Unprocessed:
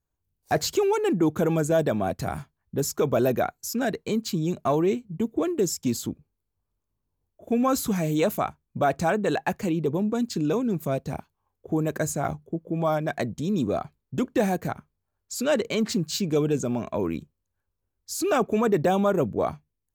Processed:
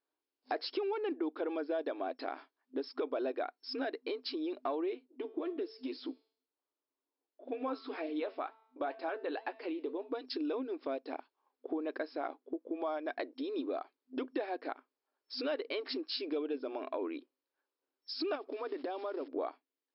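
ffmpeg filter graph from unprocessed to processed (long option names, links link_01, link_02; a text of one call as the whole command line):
ffmpeg -i in.wav -filter_complex "[0:a]asettb=1/sr,asplit=3[link_01][link_02][link_03];[link_01]atrim=end=5.074[link_04];[link_02]atrim=start=5.07:end=10.12,asetpts=PTS-STARTPTS,afade=type=in:duration=0.004:curve=qsin,afade=type=out:start_time=5.046:duration=0.004:curve=qsin,acrossover=split=4500[link_05][link_06];[link_06]acompressor=threshold=-44dB:ratio=4:attack=1:release=60[link_07];[link_05][link_07]amix=inputs=2:normalize=0,bandreject=frequency=222.3:width_type=h:width=4,bandreject=frequency=444.6:width_type=h:width=4,bandreject=frequency=666.9:width_type=h:width=4,bandreject=frequency=889.2:width_type=h:width=4,bandreject=frequency=1111.5:width_type=h:width=4,bandreject=frequency=1333.8:width_type=h:width=4,bandreject=frequency=1556.1:width_type=h:width=4,bandreject=frequency=1778.4:width_type=h:width=4,bandreject=frequency=2000.7:width_type=h:width=4,bandreject=frequency=2223:width_type=h:width=4,bandreject=frequency=2445.3:width_type=h:width=4,bandreject=frequency=2667.6:width_type=h:width=4,bandreject=frequency=2889.9:width_type=h:width=4,bandreject=frequency=3112.2:width_type=h:width=4,bandreject=frequency=3334.5:width_type=h:width=4,bandreject=frequency=3556.8:width_type=h:width=4,bandreject=frequency=3779.1:width_type=h:width=4,bandreject=frequency=4001.4:width_type=h:width=4,bandreject=frequency=4223.7:width_type=h:width=4,bandreject=frequency=4446:width_type=h:width=4,bandreject=frequency=4668.3:width_type=h:width=4,bandreject=frequency=4890.6:width_type=h:width=4,bandreject=frequency=5112.9:width_type=h:width=4,bandreject=frequency=5335.2:width_type=h:width=4,bandreject=frequency=5557.5:width_type=h:width=4,bandreject=frequency=5779.8:width_type=h:width=4,bandreject=frequency=6002.1:width_type=h:width=4,bandreject=frequency=6224.4:width_type=h:width=4,bandreject=frequency=6446.7:width_type=h:width=4,bandreject=frequency=6669:width_type=h:width=4,bandreject=frequency=6891.3:width_type=h:width=4,bandreject=frequency=7113.6:width_type=h:width=4,bandreject=frequency=7335.9:width_type=h:width=4,bandreject=frequency=7558.2:width_type=h:width=4,bandreject=frequency=7780.5:width_type=h:width=4,bandreject=frequency=8002.8:width_type=h:width=4,bandreject=frequency=8225.1:width_type=h:width=4,bandreject=frequency=8447.4:width_type=h:width=4,flanger=delay=2.8:depth=8.1:regen=65:speed=2:shape=triangular[link_08];[link_03]atrim=start=10.116[link_09];[link_04][link_08]acrossfade=duration=0.004:curve1=hsin:curve2=qsin[link_10];[link_10][link_09]acrossfade=duration=0.004:curve1=qsin:curve2=hsin,asettb=1/sr,asplit=3[link_11][link_12][link_13];[link_11]atrim=end=18.354[link_14];[link_12]atrim=start=18.35:end=19.28,asetpts=PTS-STARTPTS,afade=type=in:duration=0.004:curve=qsin,afade=type=out:start_time=0.926:duration=0.004:curve=qsin,equalizer=frequency=75:width=0.76:gain=7,acompressor=threshold=-27dB:ratio=20:attack=3.2:release=140:knee=1:detection=peak,acrusher=bits=6:mode=log:mix=0:aa=0.000001[link_15];[link_13]atrim=start=19.276[link_16];[link_14][link_15]acrossfade=duration=0.004:curve1=hsin:curve2=qsin[link_17];[link_17][link_16]acrossfade=duration=0.004:curve1=qsin:curve2=hsin,afftfilt=real='re*between(b*sr/4096,250,5400)':imag='im*between(b*sr/4096,250,5400)':win_size=4096:overlap=0.75,acompressor=threshold=-37dB:ratio=3" out.wav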